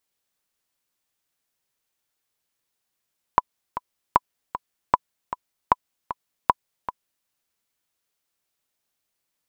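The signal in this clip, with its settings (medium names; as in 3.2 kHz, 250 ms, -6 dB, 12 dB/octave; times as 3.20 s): metronome 154 bpm, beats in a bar 2, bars 5, 996 Hz, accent 12.5 dB -1.5 dBFS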